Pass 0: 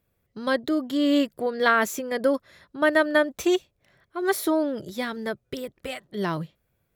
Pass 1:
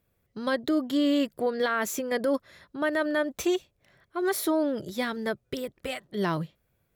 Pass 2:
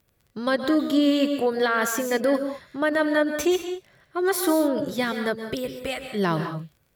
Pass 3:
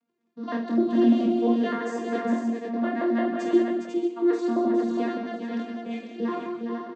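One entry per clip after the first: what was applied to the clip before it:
brickwall limiter −17.5 dBFS, peak gain reduction 10.5 dB
surface crackle 27 per second −50 dBFS; convolution reverb, pre-delay 113 ms, DRR 7 dB; level +4 dB
vocoder with an arpeggio as carrier bare fifth, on A#3, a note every 86 ms; chorus effect 0.58 Hz, delay 20 ms, depth 6.3 ms; multi-tap delay 48/409/495 ms −6/−6.5/−5.5 dB

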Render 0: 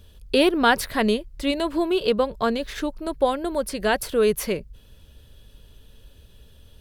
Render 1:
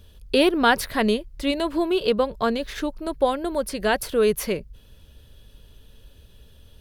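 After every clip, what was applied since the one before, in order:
parametric band 7,800 Hz −2.5 dB 0.22 octaves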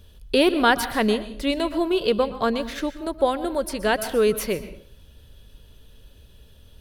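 dense smooth reverb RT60 0.52 s, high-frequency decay 0.8×, pre-delay 110 ms, DRR 12 dB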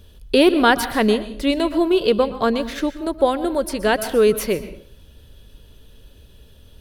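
parametric band 330 Hz +3 dB 1.1 octaves
level +2.5 dB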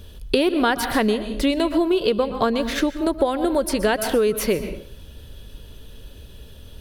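downward compressor 6 to 1, threshold −22 dBFS, peak gain reduction 12 dB
level +5.5 dB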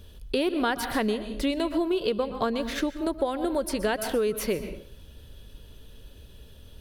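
level that may rise only so fast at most 500 dB per second
level −6.5 dB

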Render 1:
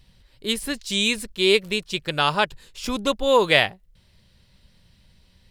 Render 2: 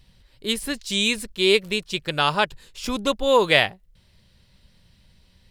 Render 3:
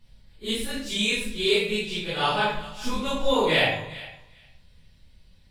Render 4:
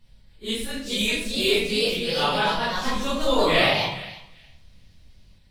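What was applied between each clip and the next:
no processing that can be heard
random phases in long frames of 100 ms; feedback echo with a high-pass in the loop 405 ms, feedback 16%, high-pass 900 Hz, level −16.5 dB; convolution reverb RT60 0.65 s, pre-delay 5 ms, DRR −4 dB; level −8 dB
delay with pitch and tempo change per echo 483 ms, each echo +2 semitones, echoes 2

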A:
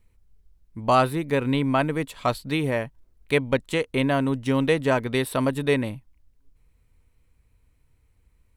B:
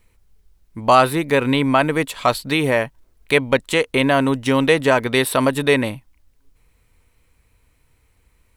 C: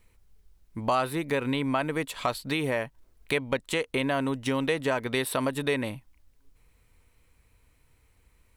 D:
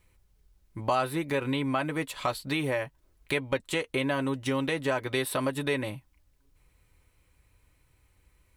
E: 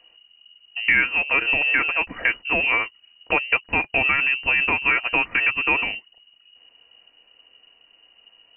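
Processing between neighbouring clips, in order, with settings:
low-shelf EQ 320 Hz −9 dB; in parallel at −0.5 dB: brickwall limiter −19 dBFS, peak gain reduction 10.5 dB; on the sum: level +5 dB
downward compressor 2 to 1, threshold −26 dBFS, peak gain reduction 10 dB; level −3.5 dB
notch comb filter 230 Hz
voice inversion scrambler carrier 2,900 Hz; level +8 dB

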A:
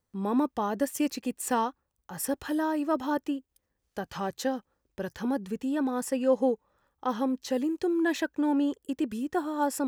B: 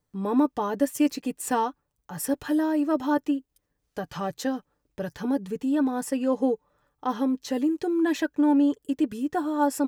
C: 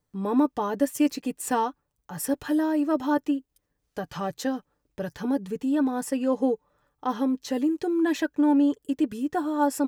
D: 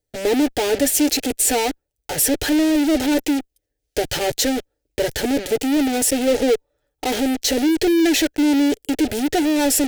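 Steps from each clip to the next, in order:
low-shelf EQ 460 Hz +3.5 dB; comb filter 6.8 ms, depth 48%
no processing that can be heard
in parallel at −4 dB: fuzz pedal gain 51 dB, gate −46 dBFS; on the sum: phaser with its sweep stopped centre 450 Hz, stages 4; level +1 dB

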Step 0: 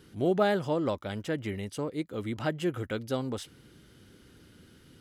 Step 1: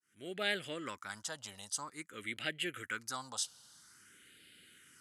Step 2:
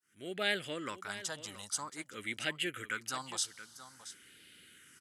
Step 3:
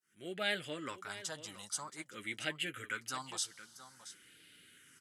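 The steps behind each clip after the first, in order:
fade in at the beginning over 0.51 s; all-pass phaser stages 4, 0.5 Hz, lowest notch 350–1,000 Hz; meter weighting curve ITU-R 468; level −1.5 dB
single-tap delay 676 ms −14 dB; level +2 dB
flanger 0.52 Hz, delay 5.1 ms, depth 2.4 ms, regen −45%; level +1.5 dB

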